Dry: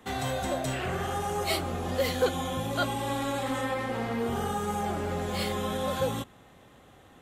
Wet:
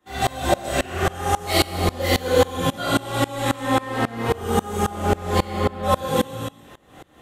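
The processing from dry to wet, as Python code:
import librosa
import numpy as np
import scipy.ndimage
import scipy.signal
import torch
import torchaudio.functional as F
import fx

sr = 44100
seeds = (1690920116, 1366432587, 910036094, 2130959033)

y = fx.lowpass(x, sr, hz=1900.0, slope=12, at=(5.38, 5.82), fade=0.02)
y = fx.rev_gated(y, sr, seeds[0], gate_ms=470, shape='falling', drr_db=-8.0)
y = fx.tremolo_decay(y, sr, direction='swelling', hz=3.7, depth_db=25)
y = y * librosa.db_to_amplitude(7.0)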